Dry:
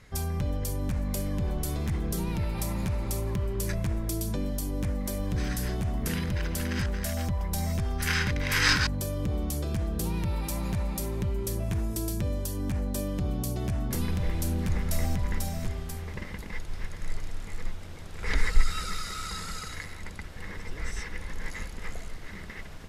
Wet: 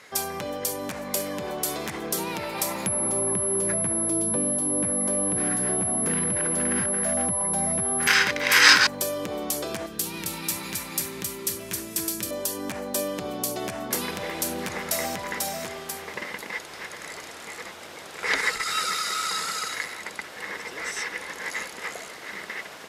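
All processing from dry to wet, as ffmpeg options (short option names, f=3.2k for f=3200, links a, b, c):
-filter_complex "[0:a]asettb=1/sr,asplit=3[a][b][c];[a]atrim=end=2.864[d];[b]atrim=start=2.86:end=8.07,asetpts=PTS-STARTPTS,afade=t=in:d=0.004:c=qsin,afade=t=out:st=5.206:d=0.004:c=qsin,bass=f=250:g=13,treble=f=4k:g=-10,aeval=exprs='val(0)+0.0631*sin(2*PI*11000*n/s)':c=same,acrossover=split=130|1500[e][f][g];[e]acompressor=threshold=-28dB:ratio=4[h];[f]acompressor=threshold=-23dB:ratio=4[i];[g]acompressor=threshold=-37dB:ratio=4[j];[h][i][j]amix=inputs=3:normalize=0[k];[c]atrim=start=8.066[l];[d][k]acrossfade=d=0.004:c1=hsin:c2=qsin[m];[m][l]acrossfade=d=0.004:c1=qsin:c2=hsin,asettb=1/sr,asplit=3[n][o][p];[n]atrim=end=9.864[q];[o]atrim=start=9.86:end=12.31,asetpts=PTS-STARTPTS,afade=t=in:d=0.004:c=qsin,afade=t=out:st=2.446:d=0.004:c=qsin,equalizer=f=670:w=0.81:g=-13,aecho=1:1:267:0.631,atrim=end_sample=108045[r];[p]atrim=start=12.306[s];[q][r]acrossfade=d=0.004:c1=hsin:c2=qsin[t];[t][s]acrossfade=d=0.004:c1=qsin:c2=hsin,acontrast=67,highpass=440,volume=3dB"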